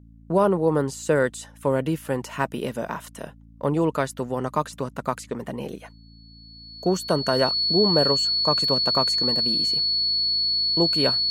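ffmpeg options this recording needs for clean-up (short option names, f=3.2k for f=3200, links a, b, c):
-af "bandreject=f=55.9:t=h:w=4,bandreject=f=111.8:t=h:w=4,bandreject=f=167.7:t=h:w=4,bandreject=f=223.6:t=h:w=4,bandreject=f=279.5:t=h:w=4,bandreject=f=4.4k:w=30"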